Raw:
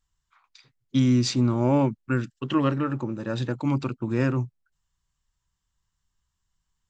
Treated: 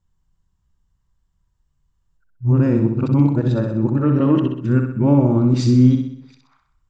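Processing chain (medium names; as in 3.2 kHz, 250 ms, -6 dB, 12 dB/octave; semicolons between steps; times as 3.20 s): reverse the whole clip; tilt shelf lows +8 dB, about 930 Hz; peak limiter -11 dBFS, peak gain reduction 6.5 dB; flutter echo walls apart 10.9 m, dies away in 0.65 s; trim +3 dB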